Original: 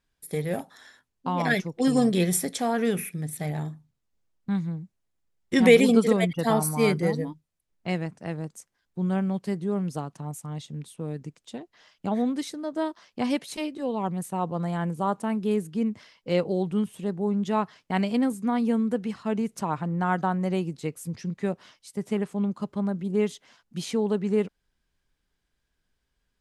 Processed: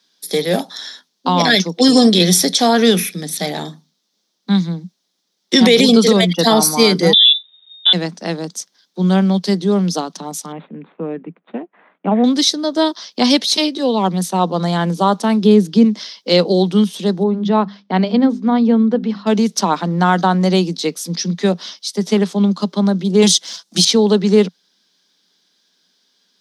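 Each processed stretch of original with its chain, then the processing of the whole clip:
0:07.13–0:07.93: transient designer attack +1 dB, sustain +6 dB + voice inversion scrambler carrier 3,700 Hz
0:10.52–0:12.24: running median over 15 samples + elliptic low-pass filter 2,600 Hz, stop band 50 dB
0:15.42–0:15.84: spectral tilt −2 dB per octave + one half of a high-frequency compander encoder only
0:17.23–0:19.27: head-to-tape spacing loss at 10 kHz 34 dB + mains-hum notches 50/100/150/200/250 Hz
0:23.22–0:23.85: parametric band 8,600 Hz +14 dB 1 octave + comb filter 6 ms, depth 50% + leveller curve on the samples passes 1
whole clip: Butterworth high-pass 170 Hz 96 dB per octave; flat-topped bell 4,500 Hz +14 dB 1.1 octaves; boost into a limiter +13.5 dB; level −1 dB

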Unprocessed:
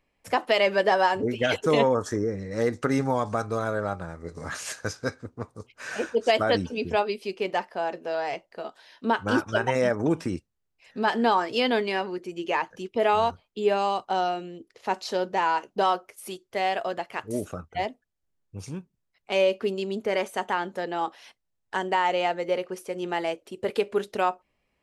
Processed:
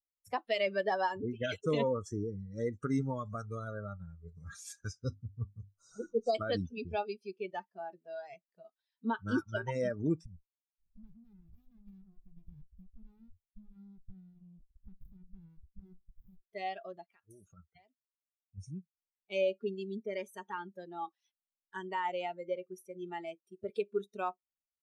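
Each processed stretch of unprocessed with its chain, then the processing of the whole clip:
0:05.04–0:06.35: linear-phase brick-wall band-stop 1,500–3,700 Hz + low-shelf EQ 160 Hz +9.5 dB + mains-hum notches 50/100/150/200/250/300/350 Hz
0:10.25–0:16.42: downward compressor 8 to 1, threshold −36 dBFS + windowed peak hold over 65 samples
0:17.05–0:18.58: low-pass filter 3,400 Hz 6 dB per octave + spectral tilt +2 dB per octave + downward compressor 8 to 1, threshold −32 dBFS
whole clip: spectral dynamics exaggerated over time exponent 1.5; noise reduction from a noise print of the clip's start 13 dB; low-shelf EQ 260 Hz +8.5 dB; level −9 dB

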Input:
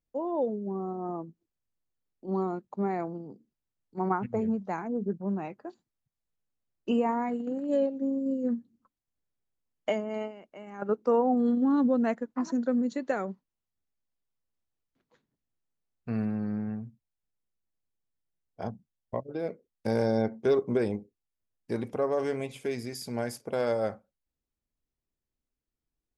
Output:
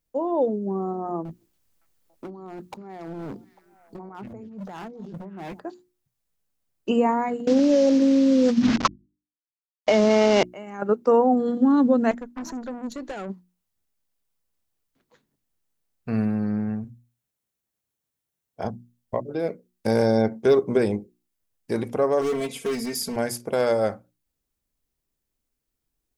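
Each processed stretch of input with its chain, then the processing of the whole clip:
0:01.25–0:05.60: compressor whose output falls as the input rises −42 dBFS + hard clipping −38.5 dBFS + echo through a band-pass that steps 282 ms, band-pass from 4,800 Hz, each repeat −1.4 octaves, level −11 dB
0:07.47–0:10.43: variable-slope delta modulation 32 kbit/s + mains-hum notches 50/100/150/200/250/300/350 Hz + envelope flattener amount 100%
0:12.11–0:13.30: downward compressor 2 to 1, threshold −31 dBFS + tube saturation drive 35 dB, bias 0.5
0:16.84–0:18.65: high-pass filter 62 Hz + notch filter 4,800 Hz, Q 17
0:22.21–0:23.16: gain into a clipping stage and back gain 31.5 dB + notch filter 2,400 Hz, Q 19 + comb filter 4.4 ms, depth 78%
whole clip: high-shelf EQ 7,300 Hz +7 dB; mains-hum notches 60/120/180/240/300/360 Hz; level +6.5 dB

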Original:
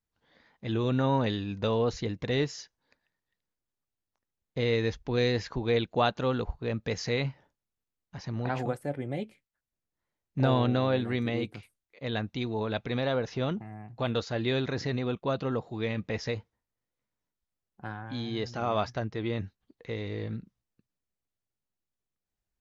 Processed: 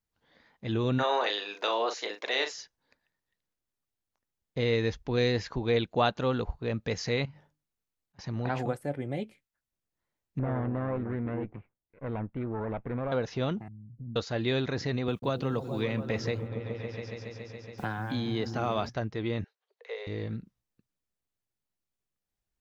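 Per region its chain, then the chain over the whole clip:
0:00.98–0:02.52: ceiling on every frequency bin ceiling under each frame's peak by 13 dB + high-pass filter 420 Hz 24 dB per octave + double-tracking delay 39 ms −8 dB
0:07.25–0:08.19: mains-hum notches 50/100/150/200/250/300 Hz + downward compressor 12 to 1, threshold −42 dBFS + volume swells 322 ms
0:10.39–0:13.12: lower of the sound and its delayed copy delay 0.33 ms + low-pass filter 1,700 Hz 24 dB per octave + downward compressor 2.5 to 1, threshold −29 dBFS
0:13.68–0:14.16: inverse Chebyshev low-pass filter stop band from 790 Hz, stop band 60 dB + downward compressor 1.5 to 1, threshold −47 dBFS
0:15.08–0:18.89: bit-depth reduction 12 bits, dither none + echo whose low-pass opens from repeat to repeat 140 ms, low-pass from 200 Hz, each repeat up 1 octave, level −6 dB + multiband upward and downward compressor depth 70%
0:19.44–0:20.07: Butterworth high-pass 410 Hz 96 dB per octave + high-frequency loss of the air 76 metres
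whole clip: no processing

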